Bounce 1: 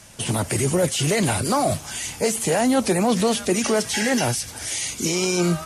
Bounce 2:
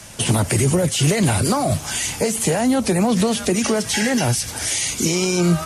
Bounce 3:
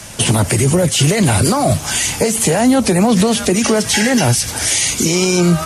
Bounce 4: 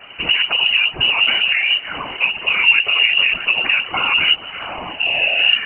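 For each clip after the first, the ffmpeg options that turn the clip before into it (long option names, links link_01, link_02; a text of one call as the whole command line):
ffmpeg -i in.wav -filter_complex "[0:a]acrossover=split=190[link_01][link_02];[link_02]acompressor=threshold=-25dB:ratio=6[link_03];[link_01][link_03]amix=inputs=2:normalize=0,volume=7dB" out.wav
ffmpeg -i in.wav -af "alimiter=limit=-10.5dB:level=0:latency=1:release=158,volume=6.5dB" out.wav
ffmpeg -i in.wav -af "lowpass=frequency=2600:width_type=q:width=0.5098,lowpass=frequency=2600:width_type=q:width=0.6013,lowpass=frequency=2600:width_type=q:width=0.9,lowpass=frequency=2600:width_type=q:width=2.563,afreqshift=-3000,afftfilt=real='hypot(re,im)*cos(2*PI*random(0))':imag='hypot(re,im)*sin(2*PI*random(1))':win_size=512:overlap=0.75,volume=3.5dB" out.wav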